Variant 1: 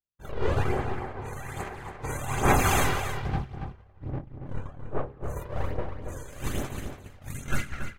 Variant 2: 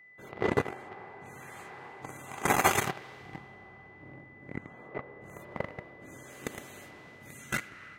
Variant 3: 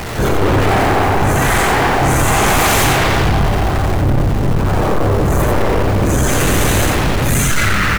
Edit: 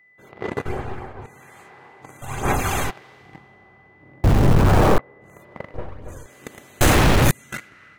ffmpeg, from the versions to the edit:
-filter_complex "[0:a]asplit=3[a][b][c];[2:a]asplit=2[d][e];[1:a]asplit=6[f][g][h][i][j][k];[f]atrim=end=0.662[l];[a]atrim=start=0.658:end=1.262[m];[g]atrim=start=1.258:end=2.222[n];[b]atrim=start=2.218:end=2.902[o];[h]atrim=start=2.898:end=4.242[p];[d]atrim=start=4.238:end=4.982[q];[i]atrim=start=4.978:end=5.742[r];[c]atrim=start=5.738:end=6.262[s];[j]atrim=start=6.258:end=6.812[t];[e]atrim=start=6.808:end=7.312[u];[k]atrim=start=7.308[v];[l][m]acrossfade=d=0.004:c1=hsin:c2=hsin[w];[w][n]acrossfade=d=0.004:c1=hsin:c2=hsin[x];[x][o]acrossfade=d=0.004:c1=hsin:c2=hsin[y];[y][p]acrossfade=d=0.004:c1=hsin:c2=hsin[z];[z][q]acrossfade=d=0.004:c1=hsin:c2=hsin[aa];[aa][r]acrossfade=d=0.004:c1=hsin:c2=hsin[ab];[ab][s]acrossfade=d=0.004:c1=hsin:c2=hsin[ac];[ac][t]acrossfade=d=0.004:c1=hsin:c2=hsin[ad];[ad][u]acrossfade=d=0.004:c1=hsin:c2=hsin[ae];[ae][v]acrossfade=d=0.004:c1=hsin:c2=hsin"

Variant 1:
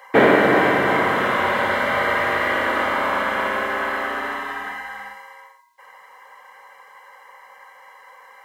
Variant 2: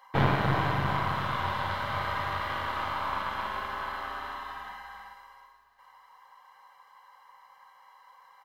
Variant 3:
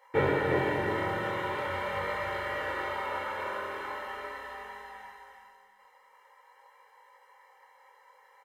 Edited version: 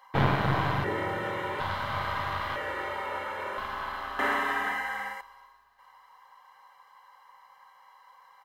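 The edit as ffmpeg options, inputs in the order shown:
-filter_complex "[2:a]asplit=2[a][b];[1:a]asplit=4[c][d][e][f];[c]atrim=end=0.842[g];[a]atrim=start=0.838:end=1.602[h];[d]atrim=start=1.598:end=2.562[i];[b]atrim=start=2.558:end=3.582[j];[e]atrim=start=3.578:end=4.192[k];[0:a]atrim=start=4.188:end=5.212[l];[f]atrim=start=5.208[m];[g][h]acrossfade=d=0.004:c1=hsin:c2=hsin[n];[n][i]acrossfade=d=0.004:c1=hsin:c2=hsin[o];[o][j]acrossfade=d=0.004:c1=hsin:c2=hsin[p];[p][k]acrossfade=d=0.004:c1=hsin:c2=hsin[q];[q][l]acrossfade=d=0.004:c1=hsin:c2=hsin[r];[r][m]acrossfade=d=0.004:c1=hsin:c2=hsin"

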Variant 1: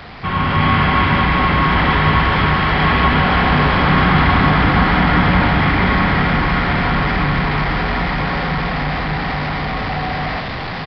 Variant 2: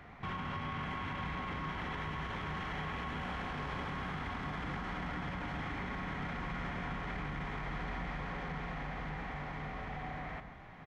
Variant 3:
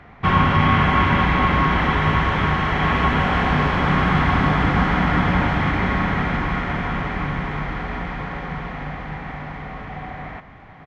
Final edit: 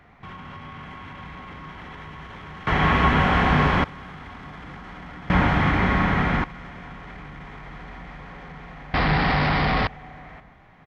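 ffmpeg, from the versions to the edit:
-filter_complex "[2:a]asplit=2[a][b];[1:a]asplit=4[c][d][e][f];[c]atrim=end=2.672[g];[a]atrim=start=2.668:end=3.842[h];[d]atrim=start=3.838:end=5.302[i];[b]atrim=start=5.298:end=6.442[j];[e]atrim=start=6.438:end=8.942[k];[0:a]atrim=start=8.938:end=9.872[l];[f]atrim=start=9.868[m];[g][h]acrossfade=d=0.004:c1=hsin:c2=hsin[n];[n][i]acrossfade=d=0.004:c1=hsin:c2=hsin[o];[o][j]acrossfade=d=0.004:c1=hsin:c2=hsin[p];[p][k]acrossfade=d=0.004:c1=hsin:c2=hsin[q];[q][l]acrossfade=d=0.004:c1=hsin:c2=hsin[r];[r][m]acrossfade=d=0.004:c1=hsin:c2=hsin"

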